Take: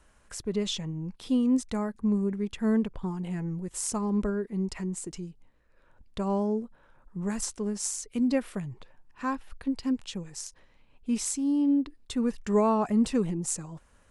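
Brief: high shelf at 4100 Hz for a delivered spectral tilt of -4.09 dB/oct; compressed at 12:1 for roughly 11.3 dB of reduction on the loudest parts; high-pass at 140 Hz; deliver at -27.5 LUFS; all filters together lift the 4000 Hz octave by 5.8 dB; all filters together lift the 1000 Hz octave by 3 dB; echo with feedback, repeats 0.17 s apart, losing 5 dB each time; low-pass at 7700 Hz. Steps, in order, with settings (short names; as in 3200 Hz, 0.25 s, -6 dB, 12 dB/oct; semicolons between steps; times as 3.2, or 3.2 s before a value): HPF 140 Hz; LPF 7700 Hz; bell 1000 Hz +3 dB; bell 4000 Hz +5.5 dB; high shelf 4100 Hz +3.5 dB; compressor 12:1, threshold -31 dBFS; feedback echo 0.17 s, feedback 56%, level -5 dB; gain +7.5 dB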